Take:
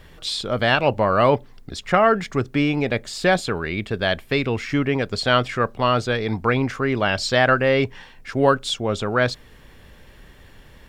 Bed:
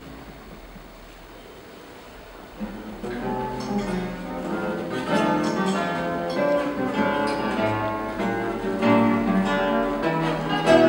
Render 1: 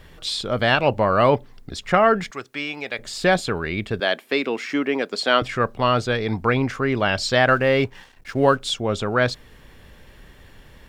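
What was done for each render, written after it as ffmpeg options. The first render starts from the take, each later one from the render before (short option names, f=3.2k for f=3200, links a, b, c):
-filter_complex "[0:a]asettb=1/sr,asplit=3[a][b][c];[a]atrim=end=2.314[d];[b]atrim=start=2.31:end=2.99,asetpts=PTS-STARTPTS,afade=t=in:d=0.004:c=qsin,afade=t=out:st=0.676:d=0.004:c=qsin,highpass=f=1.4k:p=1[e];[c]atrim=start=2.986[f];[d][e]acrossfade=d=0.004:c1=hsin:c2=qsin[g];[g][f]acrossfade=d=0.004:c1=qsin:c2=hsin,asettb=1/sr,asplit=3[h][i][j];[h]atrim=end=4.004[k];[i]atrim=start=4:end=5.42,asetpts=PTS-STARTPTS,afade=t=in:d=0.004:c=qsin,afade=t=out:st=1.416:d=0.004:c=qsin,highpass=f=240:w=0.5412,highpass=f=240:w=1.3066[l];[j]atrim=start=5.416[m];[k][l]acrossfade=d=0.004:c1=hsin:c2=qsin[n];[n][m]acrossfade=d=0.004:c1=qsin:c2=hsin,asettb=1/sr,asplit=3[o][p][q];[o]atrim=end=7.484[r];[p]atrim=start=7.48:end=8.61,asetpts=PTS-STARTPTS,afade=t=in:d=0.004:c=qsin,afade=t=out:st=1.126:d=0.004:c=qsin,aeval=exprs='sgn(val(0))*max(abs(val(0))-0.00376,0)':c=same[s];[q]atrim=start=8.606[t];[r][s]acrossfade=d=0.004:c1=hsin:c2=qsin[u];[u][t]acrossfade=d=0.004:c1=qsin:c2=hsin"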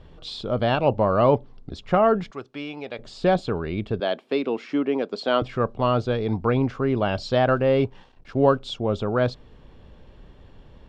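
-af "lowpass=3k,equalizer=f=1.9k:t=o:w=1:g=-13"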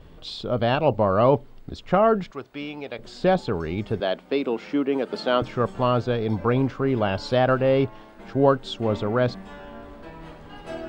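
-filter_complex "[1:a]volume=-19dB[a];[0:a][a]amix=inputs=2:normalize=0"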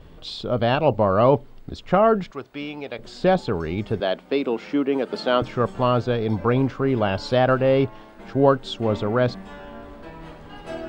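-af "volume=1.5dB"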